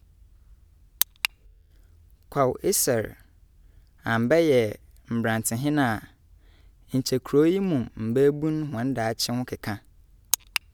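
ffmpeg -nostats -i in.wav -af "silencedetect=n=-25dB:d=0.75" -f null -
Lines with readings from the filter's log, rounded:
silence_start: 0.00
silence_end: 1.01 | silence_duration: 1.01
silence_start: 1.25
silence_end: 2.36 | silence_duration: 1.10
silence_start: 3.05
silence_end: 4.07 | silence_duration: 1.02
silence_start: 5.98
silence_end: 6.94 | silence_duration: 0.96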